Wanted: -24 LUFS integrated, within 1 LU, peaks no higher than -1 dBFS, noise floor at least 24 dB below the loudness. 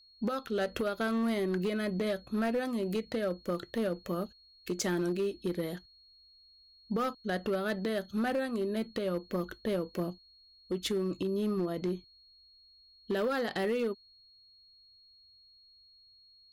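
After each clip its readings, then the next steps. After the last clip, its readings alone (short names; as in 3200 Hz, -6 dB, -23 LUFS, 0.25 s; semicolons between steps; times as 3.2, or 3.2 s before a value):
clipped 1.6%; flat tops at -25.5 dBFS; steady tone 4300 Hz; tone level -58 dBFS; loudness -33.5 LUFS; peak -25.5 dBFS; loudness target -24.0 LUFS
-> clip repair -25.5 dBFS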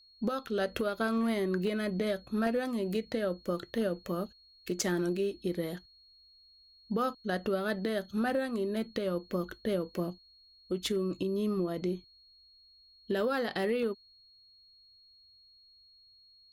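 clipped 0.0%; steady tone 4300 Hz; tone level -58 dBFS
-> notch 4300 Hz, Q 30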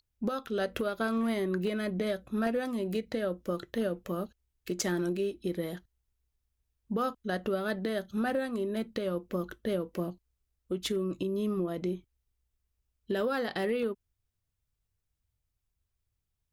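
steady tone none; loudness -33.0 LUFS; peak -16.5 dBFS; loudness target -24.0 LUFS
-> gain +9 dB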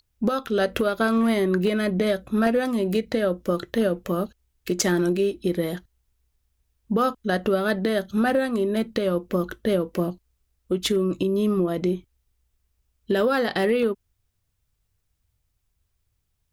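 loudness -24.0 LUFS; peak -7.5 dBFS; noise floor -74 dBFS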